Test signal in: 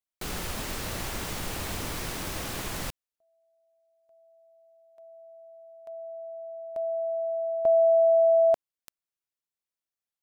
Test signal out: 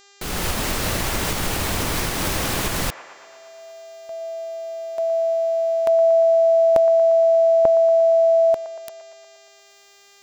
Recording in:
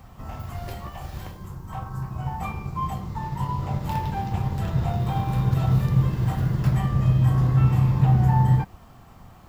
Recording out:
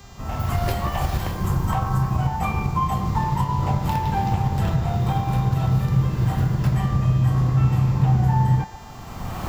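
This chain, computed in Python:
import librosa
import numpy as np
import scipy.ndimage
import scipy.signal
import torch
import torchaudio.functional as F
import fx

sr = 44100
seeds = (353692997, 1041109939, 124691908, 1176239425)

y = fx.recorder_agc(x, sr, target_db=-13.0, rise_db_per_s=23.0, max_gain_db=28)
y = fx.dmg_buzz(y, sr, base_hz=400.0, harmonics=19, level_db=-52.0, tilt_db=-1, odd_only=False)
y = fx.echo_wet_bandpass(y, sr, ms=117, feedback_pct=68, hz=1100.0, wet_db=-12.0)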